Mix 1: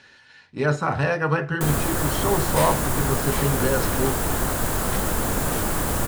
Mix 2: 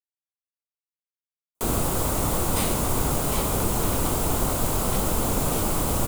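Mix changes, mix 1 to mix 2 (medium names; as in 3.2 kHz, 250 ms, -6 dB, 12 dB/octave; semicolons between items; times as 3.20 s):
speech: muted; master: add peaking EQ 1.7 kHz -12 dB 0.42 oct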